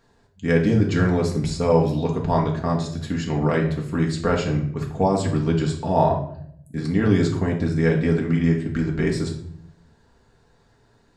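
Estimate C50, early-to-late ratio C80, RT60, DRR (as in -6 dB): 7.0 dB, 11.5 dB, 0.65 s, -2.0 dB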